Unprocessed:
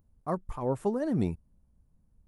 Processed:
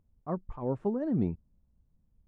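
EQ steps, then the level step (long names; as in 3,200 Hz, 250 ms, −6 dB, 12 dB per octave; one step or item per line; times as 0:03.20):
dynamic equaliser 230 Hz, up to +4 dB, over −40 dBFS, Q 0.74
head-to-tape spacing loss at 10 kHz 30 dB
−3.0 dB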